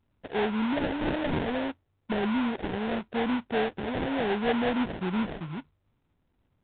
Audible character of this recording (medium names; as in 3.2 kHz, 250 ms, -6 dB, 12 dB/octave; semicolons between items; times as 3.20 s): aliases and images of a low sample rate 1.2 kHz, jitter 20%; µ-law